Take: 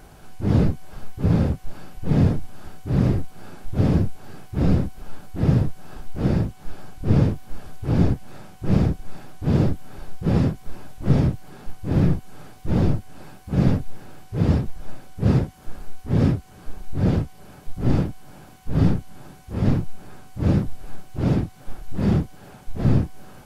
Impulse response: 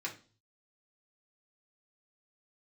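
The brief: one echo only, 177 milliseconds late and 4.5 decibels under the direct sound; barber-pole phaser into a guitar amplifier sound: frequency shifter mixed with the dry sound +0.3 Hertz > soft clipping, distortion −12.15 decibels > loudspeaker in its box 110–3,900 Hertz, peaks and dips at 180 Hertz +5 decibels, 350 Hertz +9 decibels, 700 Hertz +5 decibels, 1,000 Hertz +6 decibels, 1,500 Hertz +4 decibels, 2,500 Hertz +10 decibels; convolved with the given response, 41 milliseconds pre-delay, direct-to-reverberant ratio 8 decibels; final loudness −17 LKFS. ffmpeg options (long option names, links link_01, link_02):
-filter_complex "[0:a]aecho=1:1:177:0.596,asplit=2[link_01][link_02];[1:a]atrim=start_sample=2205,adelay=41[link_03];[link_02][link_03]afir=irnorm=-1:irlink=0,volume=-10dB[link_04];[link_01][link_04]amix=inputs=2:normalize=0,asplit=2[link_05][link_06];[link_06]afreqshift=0.3[link_07];[link_05][link_07]amix=inputs=2:normalize=1,asoftclip=threshold=-18.5dB,highpass=110,equalizer=frequency=180:width_type=q:width=4:gain=5,equalizer=frequency=350:width_type=q:width=4:gain=9,equalizer=frequency=700:width_type=q:width=4:gain=5,equalizer=frequency=1000:width_type=q:width=4:gain=6,equalizer=frequency=1500:width_type=q:width=4:gain=4,equalizer=frequency=2500:width_type=q:width=4:gain=10,lowpass=frequency=3900:width=0.5412,lowpass=frequency=3900:width=1.3066,volume=9.5dB"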